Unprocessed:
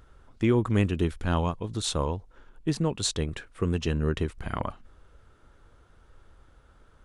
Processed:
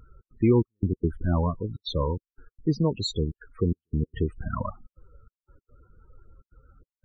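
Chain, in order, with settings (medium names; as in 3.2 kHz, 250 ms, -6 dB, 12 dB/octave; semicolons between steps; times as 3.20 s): trance gate "xx.xxx..x.xxxxx" 145 bpm -60 dB; loudest bins only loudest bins 16; trim +3 dB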